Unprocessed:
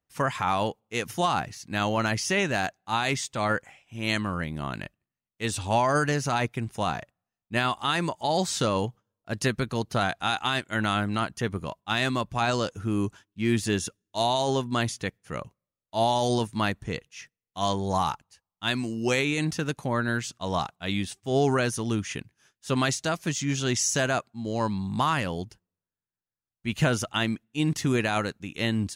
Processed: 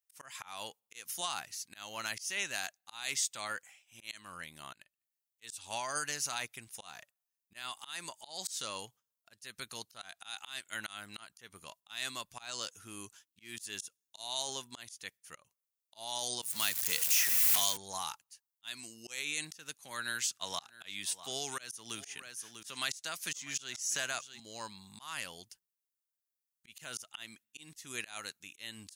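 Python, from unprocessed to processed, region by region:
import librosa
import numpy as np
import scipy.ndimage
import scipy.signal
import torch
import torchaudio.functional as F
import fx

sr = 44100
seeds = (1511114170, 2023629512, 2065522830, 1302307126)

y = fx.chain(x, sr, fx.zero_step(step_db=-33.5),
    fx.high_shelf(hz=3400.0, db=10.0),
    fx.band_squash(depth_pct=100), at=(16.42, 17.77))
y = fx.chain(y, sr, fx.peak_eq(hz=1700.0, db=2.5, octaves=2.1),
    fx.echo_single(ms=647, db=-19.0),
    fx.band_squash(depth_pct=70), at=(19.78, 24.4))
y = librosa.effects.preemphasis(y, coef=0.97, zi=[0.0])
y = fx.auto_swell(y, sr, attack_ms=231.0)
y = y * 10.0 ** (2.5 / 20.0)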